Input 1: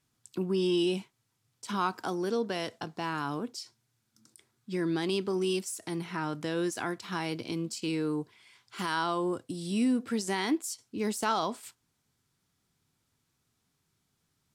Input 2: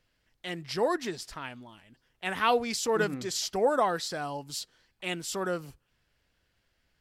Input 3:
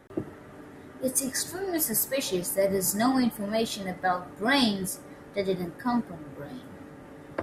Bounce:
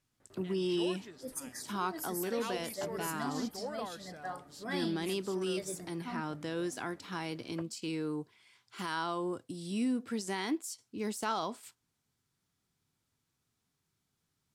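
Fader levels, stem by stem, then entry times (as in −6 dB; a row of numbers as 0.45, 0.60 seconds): −5.0, −16.0, −15.0 decibels; 0.00, 0.00, 0.20 seconds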